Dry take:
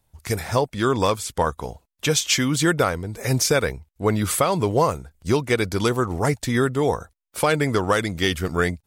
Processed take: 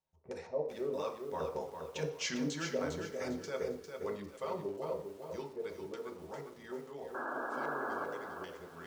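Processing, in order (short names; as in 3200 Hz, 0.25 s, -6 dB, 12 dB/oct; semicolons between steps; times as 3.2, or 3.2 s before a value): Doppler pass-by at 2.03, 15 m/s, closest 1.2 m; tone controls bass -12 dB, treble -9 dB; reverse; compressor 8:1, threshold -47 dBFS, peak gain reduction 27 dB; reverse; LFO low-pass square 3.2 Hz 510–6300 Hz; on a send at -1.5 dB: reverb RT60 0.55 s, pre-delay 3 ms; on the sum: painted sound noise, 7.14–8.05, 220–1700 Hz -47 dBFS; lo-fi delay 0.402 s, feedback 35%, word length 11-bit, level -6 dB; gain +8 dB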